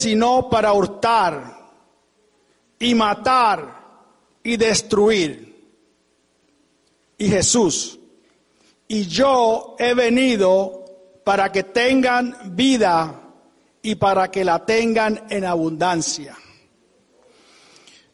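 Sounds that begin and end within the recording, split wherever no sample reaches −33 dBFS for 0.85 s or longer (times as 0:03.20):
0:02.81–0:05.43
0:07.20–0:07.95
0:08.90–0:16.37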